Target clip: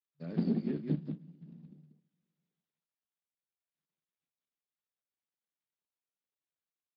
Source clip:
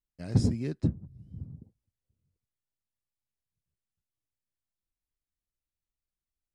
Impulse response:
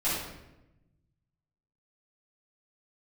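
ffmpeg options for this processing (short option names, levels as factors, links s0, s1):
-filter_complex "[0:a]asetrate=41454,aresample=44100,asplit=2[s0][s1];[1:a]atrim=start_sample=2205,lowshelf=f=210:g=3,adelay=46[s2];[s1][s2]afir=irnorm=-1:irlink=0,volume=0.0237[s3];[s0][s3]amix=inputs=2:normalize=0,afftfilt=real='re*between(b*sr/4096,150,5100)':imag='im*between(b*sr/4096,150,5100)':win_size=4096:overlap=0.75,acrossover=split=190|2000[s4][s5][s6];[s6]acompressor=threshold=0.00126:ratio=8[s7];[s4][s5][s7]amix=inputs=3:normalize=0,aecho=1:1:34.99|186.6:0.316|0.447,volume=0.794" -ar 16000 -c:a libspeex -b:a 13k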